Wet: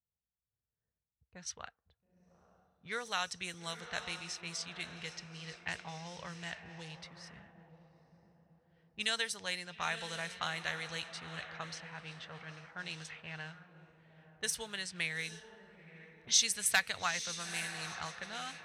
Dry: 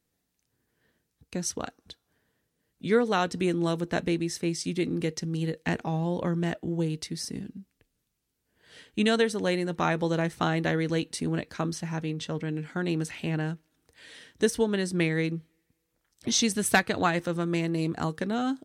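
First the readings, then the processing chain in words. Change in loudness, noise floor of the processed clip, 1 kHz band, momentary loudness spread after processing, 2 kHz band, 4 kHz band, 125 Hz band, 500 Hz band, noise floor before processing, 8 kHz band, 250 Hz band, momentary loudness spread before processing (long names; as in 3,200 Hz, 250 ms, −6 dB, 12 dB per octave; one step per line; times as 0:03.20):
−9.0 dB, below −85 dBFS, −10.5 dB, 18 LU, −5.0 dB, −2.0 dB, −19.5 dB, −19.5 dB, −79 dBFS, −2.0 dB, −23.5 dB, 10 LU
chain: low-shelf EQ 480 Hz −3 dB
on a send: feedback delay with all-pass diffusion 914 ms, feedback 44%, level −10 dB
on the sum: low-pass that shuts in the quiet parts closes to 430 Hz, open at −23.5 dBFS
high-pass filter 44 Hz
guitar amp tone stack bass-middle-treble 10-0-10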